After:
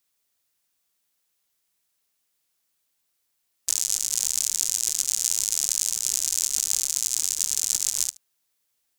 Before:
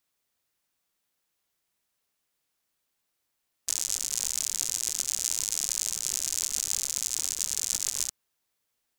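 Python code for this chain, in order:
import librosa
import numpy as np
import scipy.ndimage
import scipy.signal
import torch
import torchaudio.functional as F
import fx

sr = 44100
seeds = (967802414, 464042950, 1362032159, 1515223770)

p1 = fx.high_shelf(x, sr, hz=3100.0, db=7.5)
p2 = p1 + fx.echo_single(p1, sr, ms=75, db=-22.0, dry=0)
y = F.gain(torch.from_numpy(p2), -1.5).numpy()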